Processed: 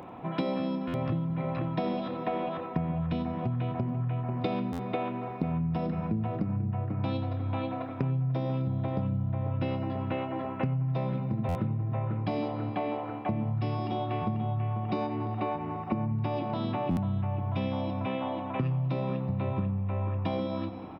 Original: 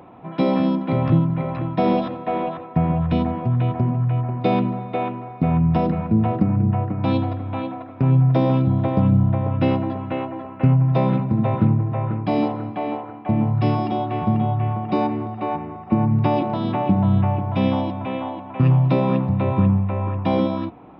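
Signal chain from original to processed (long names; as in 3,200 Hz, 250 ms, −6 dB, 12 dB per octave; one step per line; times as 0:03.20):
high-shelf EQ 3,200 Hz +5 dB
double-tracking delay 29 ms −12.5 dB
repeating echo 92 ms, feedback 58%, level −19 dB
downward compressor 6 to 1, threshold −28 dBFS, peak gain reduction 16 dB
buffer that repeats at 0:00.87/0:04.72/0:11.48/0:16.90, samples 512, times 5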